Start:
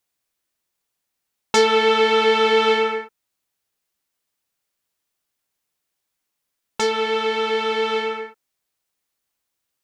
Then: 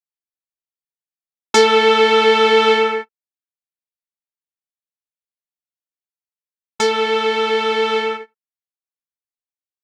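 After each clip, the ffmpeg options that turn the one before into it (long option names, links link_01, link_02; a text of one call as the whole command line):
ffmpeg -i in.wav -af "agate=range=-27dB:threshold=-27dB:ratio=16:detection=peak,volume=4dB" out.wav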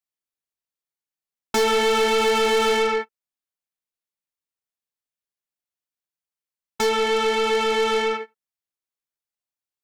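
ffmpeg -i in.wav -af "asoftclip=type=tanh:threshold=-18dB,volume=1dB" out.wav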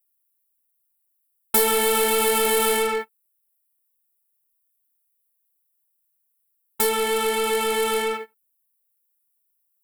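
ffmpeg -i in.wav -af "aexciter=amount=6.3:drive=9.3:freq=8600,volume=-2dB" out.wav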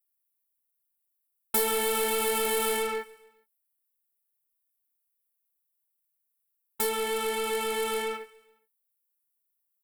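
ffmpeg -i in.wav -af "aecho=1:1:139|278|417:0.0794|0.0397|0.0199,volume=-7dB" out.wav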